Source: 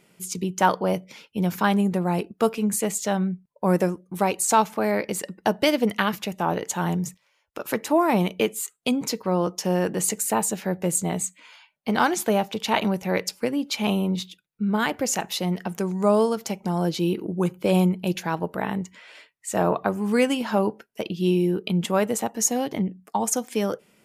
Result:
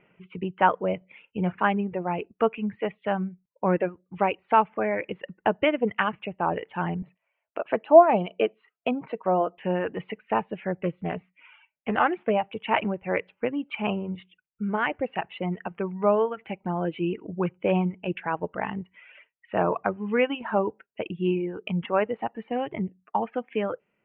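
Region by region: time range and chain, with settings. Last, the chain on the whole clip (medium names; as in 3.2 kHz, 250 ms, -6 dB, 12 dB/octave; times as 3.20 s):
0.98–1.58 s: de-esser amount 75% + doubling 33 ms -11 dB
7.02–9.58 s: dynamic bell 2.1 kHz, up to -7 dB, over -46 dBFS, Q 3.1 + high-pass 160 Hz + small resonant body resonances 670/4000 Hz, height 13 dB, ringing for 35 ms
10.73–12.31 s: band-stop 1 kHz, Q 14 + loudspeaker Doppler distortion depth 0.17 ms
whole clip: steep low-pass 2.9 kHz 72 dB/octave; reverb removal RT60 1.2 s; peaking EQ 220 Hz -4.5 dB 1.2 oct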